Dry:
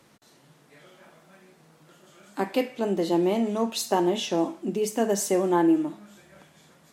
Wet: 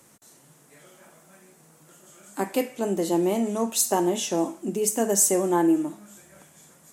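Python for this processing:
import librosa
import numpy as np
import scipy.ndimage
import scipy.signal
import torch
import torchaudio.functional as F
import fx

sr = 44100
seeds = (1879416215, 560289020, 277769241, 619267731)

y = fx.high_shelf_res(x, sr, hz=5700.0, db=9.5, q=1.5)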